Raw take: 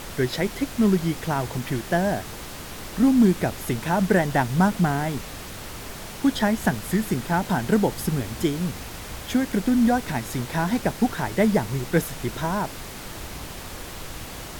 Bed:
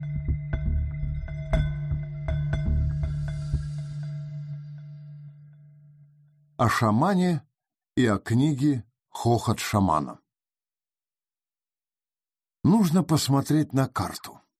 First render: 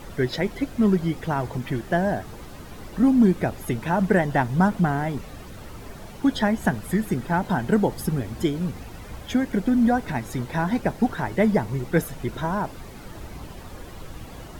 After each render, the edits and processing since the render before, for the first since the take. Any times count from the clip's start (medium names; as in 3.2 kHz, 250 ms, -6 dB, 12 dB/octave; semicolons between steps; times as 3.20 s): noise reduction 11 dB, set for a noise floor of -37 dBFS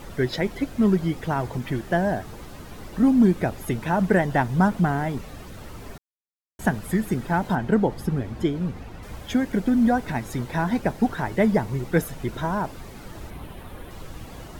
5.98–6.59 s: mute; 7.55–9.03 s: treble shelf 5 kHz -12 dB; 13.30–13.91 s: high-order bell 5.9 kHz -9 dB 1 oct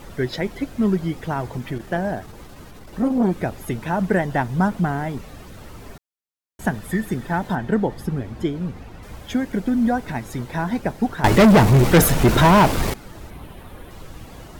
1.71–3.32 s: transformer saturation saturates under 360 Hz; 6.74–8.03 s: small resonant body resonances 1.8/3.5 kHz, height 10 dB; 11.24–12.94 s: waveshaping leveller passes 5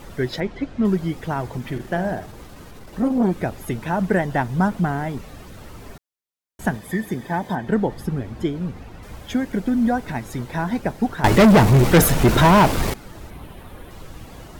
0.40–0.85 s: distance through air 120 m; 1.59–3.00 s: flutter echo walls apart 8.8 m, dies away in 0.3 s; 6.77–7.67 s: comb of notches 1.4 kHz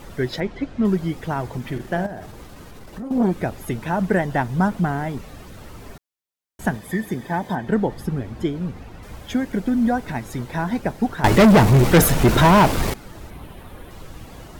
2.06–3.11 s: compression 4:1, threshold -30 dBFS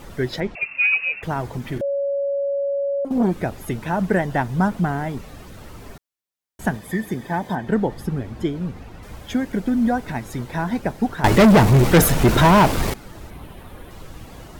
0.55–1.23 s: frequency inversion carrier 2.7 kHz; 1.81–3.05 s: bleep 560 Hz -19.5 dBFS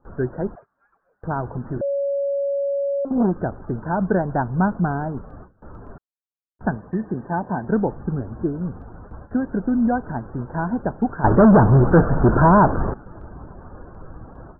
steep low-pass 1.6 kHz 96 dB/octave; gate with hold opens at -30 dBFS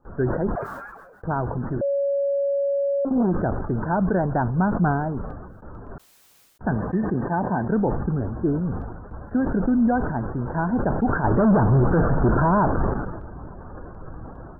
peak limiter -13 dBFS, peak gain reduction 8 dB; decay stretcher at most 42 dB/s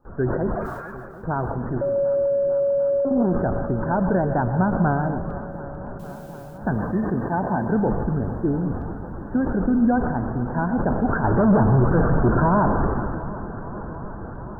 shuffle delay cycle 745 ms, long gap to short 1.5:1, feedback 66%, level -16.5 dB; plate-style reverb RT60 0.54 s, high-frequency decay 0.5×, pre-delay 105 ms, DRR 9 dB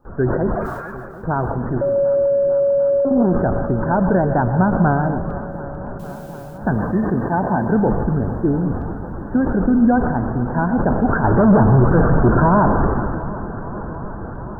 trim +4.5 dB